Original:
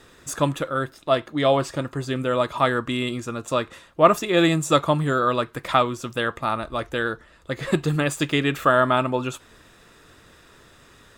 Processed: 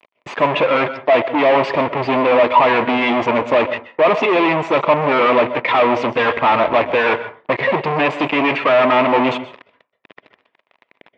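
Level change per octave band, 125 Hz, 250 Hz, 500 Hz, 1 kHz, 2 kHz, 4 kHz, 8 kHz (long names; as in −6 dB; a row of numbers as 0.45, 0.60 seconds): −3.5 dB, +4.5 dB, +8.0 dB, +8.0 dB, +8.5 dB, +3.5 dB, below −10 dB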